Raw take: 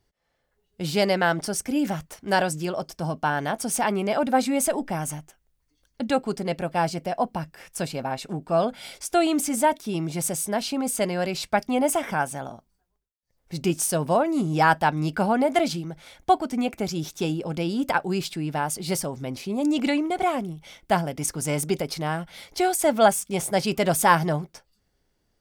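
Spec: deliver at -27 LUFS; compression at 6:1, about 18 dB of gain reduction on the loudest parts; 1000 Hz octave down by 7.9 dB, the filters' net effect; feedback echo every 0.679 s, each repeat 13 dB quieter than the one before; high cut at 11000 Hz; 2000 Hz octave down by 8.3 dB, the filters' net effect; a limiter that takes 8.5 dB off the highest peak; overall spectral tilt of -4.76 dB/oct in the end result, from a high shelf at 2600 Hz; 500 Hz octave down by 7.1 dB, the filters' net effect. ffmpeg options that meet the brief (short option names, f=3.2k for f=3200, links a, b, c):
-af "lowpass=11k,equalizer=f=500:t=o:g=-7,equalizer=f=1k:t=o:g=-6,equalizer=f=2k:t=o:g=-7,highshelf=f=2.6k:g=-3,acompressor=threshold=-40dB:ratio=6,alimiter=level_in=10.5dB:limit=-24dB:level=0:latency=1,volume=-10.5dB,aecho=1:1:679|1358|2037:0.224|0.0493|0.0108,volume=17dB"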